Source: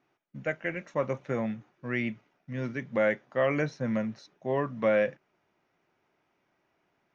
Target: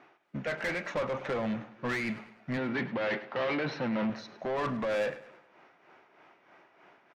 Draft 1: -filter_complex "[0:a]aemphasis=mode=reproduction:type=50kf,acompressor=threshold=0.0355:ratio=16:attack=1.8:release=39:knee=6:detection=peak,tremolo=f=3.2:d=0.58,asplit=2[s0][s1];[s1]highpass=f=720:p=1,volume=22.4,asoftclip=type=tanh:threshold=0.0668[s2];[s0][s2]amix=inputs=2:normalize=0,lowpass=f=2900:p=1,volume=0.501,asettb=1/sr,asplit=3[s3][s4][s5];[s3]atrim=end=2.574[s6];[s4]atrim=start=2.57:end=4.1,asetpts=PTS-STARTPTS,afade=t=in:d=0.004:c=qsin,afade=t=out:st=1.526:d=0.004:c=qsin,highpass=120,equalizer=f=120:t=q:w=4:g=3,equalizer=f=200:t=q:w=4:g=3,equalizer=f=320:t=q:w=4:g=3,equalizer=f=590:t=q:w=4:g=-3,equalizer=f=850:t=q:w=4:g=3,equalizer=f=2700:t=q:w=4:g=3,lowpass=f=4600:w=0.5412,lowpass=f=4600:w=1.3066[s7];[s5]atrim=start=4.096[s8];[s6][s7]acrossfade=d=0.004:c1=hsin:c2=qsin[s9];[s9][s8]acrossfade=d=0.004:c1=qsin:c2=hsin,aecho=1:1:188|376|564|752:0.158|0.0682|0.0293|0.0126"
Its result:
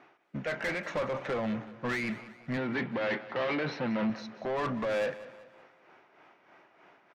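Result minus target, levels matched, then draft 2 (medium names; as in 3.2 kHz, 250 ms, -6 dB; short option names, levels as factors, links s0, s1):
echo 84 ms late
-filter_complex "[0:a]aemphasis=mode=reproduction:type=50kf,acompressor=threshold=0.0355:ratio=16:attack=1.8:release=39:knee=6:detection=peak,tremolo=f=3.2:d=0.58,asplit=2[s0][s1];[s1]highpass=f=720:p=1,volume=22.4,asoftclip=type=tanh:threshold=0.0668[s2];[s0][s2]amix=inputs=2:normalize=0,lowpass=f=2900:p=1,volume=0.501,asettb=1/sr,asplit=3[s3][s4][s5];[s3]atrim=end=2.574[s6];[s4]atrim=start=2.57:end=4.1,asetpts=PTS-STARTPTS,afade=t=in:d=0.004:c=qsin,afade=t=out:st=1.526:d=0.004:c=qsin,highpass=120,equalizer=f=120:t=q:w=4:g=3,equalizer=f=200:t=q:w=4:g=3,equalizer=f=320:t=q:w=4:g=3,equalizer=f=590:t=q:w=4:g=-3,equalizer=f=850:t=q:w=4:g=3,equalizer=f=2700:t=q:w=4:g=3,lowpass=f=4600:w=0.5412,lowpass=f=4600:w=1.3066[s7];[s5]atrim=start=4.096[s8];[s6][s7]acrossfade=d=0.004:c1=hsin:c2=qsin[s9];[s9][s8]acrossfade=d=0.004:c1=qsin:c2=hsin,aecho=1:1:104|208|312|416:0.158|0.0682|0.0293|0.0126"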